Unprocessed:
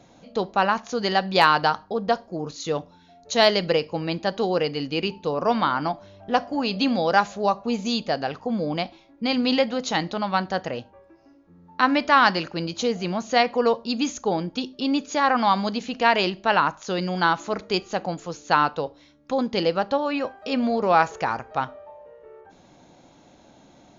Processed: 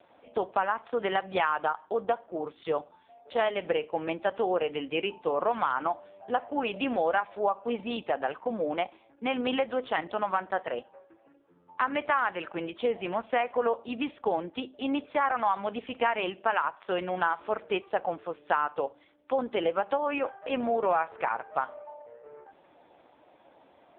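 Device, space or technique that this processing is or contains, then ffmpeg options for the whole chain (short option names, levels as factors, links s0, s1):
voicemail: -af "highpass=430,lowpass=3000,acompressor=threshold=0.0708:ratio=6,volume=1.19" -ar 8000 -c:a libopencore_amrnb -b:a 5150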